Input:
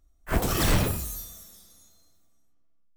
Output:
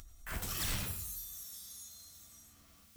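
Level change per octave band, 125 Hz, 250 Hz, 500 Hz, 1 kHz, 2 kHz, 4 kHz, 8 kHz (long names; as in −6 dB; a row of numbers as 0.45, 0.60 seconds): −15.5, −19.0, −21.0, −16.0, −11.0, −8.5, −6.5 decibels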